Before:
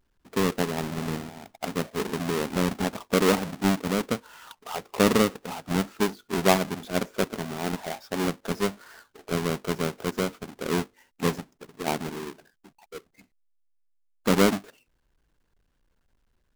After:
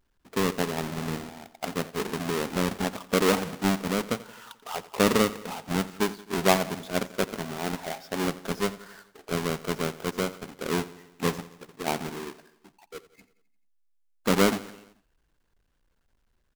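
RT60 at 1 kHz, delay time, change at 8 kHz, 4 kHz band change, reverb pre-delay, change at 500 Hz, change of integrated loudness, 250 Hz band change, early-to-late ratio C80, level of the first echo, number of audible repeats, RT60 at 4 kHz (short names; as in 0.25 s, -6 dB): none, 87 ms, 0.0 dB, 0.0 dB, none, -1.0 dB, -1.0 dB, -2.0 dB, none, -18.0 dB, 4, none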